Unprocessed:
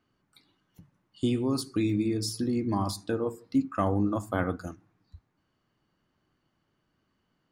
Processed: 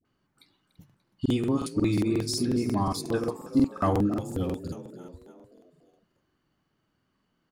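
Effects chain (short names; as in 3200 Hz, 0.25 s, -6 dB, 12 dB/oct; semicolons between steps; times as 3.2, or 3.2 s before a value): dispersion highs, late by 52 ms, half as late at 650 Hz; in parallel at -11 dB: crossover distortion -45 dBFS; on the sum: spectral repair 4.04–4.88, 540–2300 Hz after; frequency-shifting echo 0.292 s, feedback 52%, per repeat +41 Hz, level -14 dB; crackling interface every 0.18 s, samples 2048, repeat, from 0.67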